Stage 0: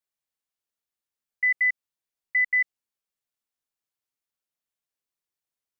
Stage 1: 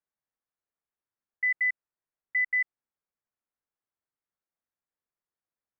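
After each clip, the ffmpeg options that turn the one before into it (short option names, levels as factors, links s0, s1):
-af "lowpass=f=1900:w=0.5412,lowpass=f=1900:w=1.3066"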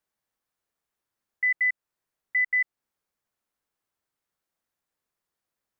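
-af "alimiter=level_in=1.41:limit=0.0631:level=0:latency=1:release=222,volume=0.708,volume=2.51"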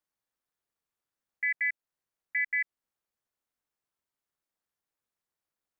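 -af "tremolo=f=290:d=0.889,volume=0.841"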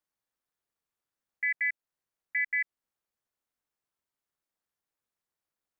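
-af anull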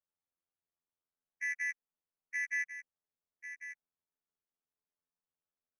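-af "adynamicsmooth=sensitivity=3.5:basefreq=1700,afftfilt=real='hypot(re,im)*cos(PI*b)':imag='0':win_size=2048:overlap=0.75,aecho=1:1:1096:0.316,volume=0.794"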